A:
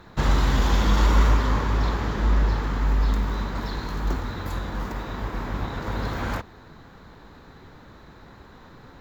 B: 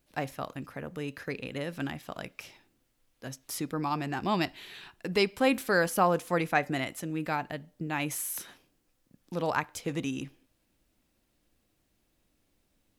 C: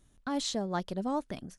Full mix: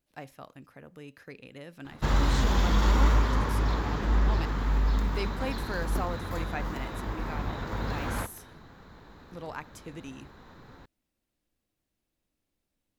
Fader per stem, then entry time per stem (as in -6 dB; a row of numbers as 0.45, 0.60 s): -4.0, -10.0, -6.0 dB; 1.85, 0.00, 1.90 s